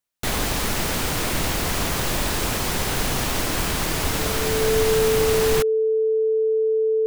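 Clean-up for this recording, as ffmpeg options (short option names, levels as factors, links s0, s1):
-af "adeclick=t=4,bandreject=f=440:w=30"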